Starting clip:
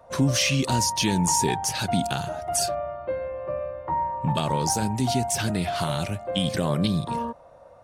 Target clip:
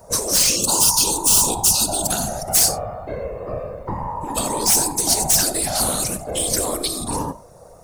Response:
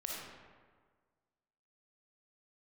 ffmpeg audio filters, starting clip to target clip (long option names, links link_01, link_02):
-filter_complex "[0:a]aexciter=amount=7.8:drive=7.4:freq=4700,asplit=2[link_01][link_02];[1:a]atrim=start_sample=2205,atrim=end_sample=4410[link_03];[link_02][link_03]afir=irnorm=-1:irlink=0,volume=-9.5dB[link_04];[link_01][link_04]amix=inputs=2:normalize=0,acontrast=68,asettb=1/sr,asplit=3[link_05][link_06][link_07];[link_05]atrim=end=0.564[link_08];[link_06]atrim=start=0.56:end=2.07,asetpts=PTS-STARTPTS,afade=type=in:duration=0.004:curve=qsin,afade=type=out:start_time=1.506:duration=0.004:curve=qsin,asuperstop=centerf=1900:order=20:qfactor=1.7[link_09];[link_07]atrim=start=2.066[link_10];[link_08][link_09]acrossfade=duration=0.004:curve1=hsin:curve2=qsin[link_11];[link_11][link_10]acrossfade=duration=0.004:curve1=qsin:curve2=hsin,afftfilt=real='hypot(re,im)*cos(2*PI*random(0))':imag='hypot(re,im)*sin(2*PI*random(1))':win_size=512:overlap=0.75,lowshelf=frequency=290:gain=12,afftfilt=real='re*lt(hypot(re,im),0.631)':imag='im*lt(hypot(re,im),0.631)':win_size=1024:overlap=0.75,volume=-1dB"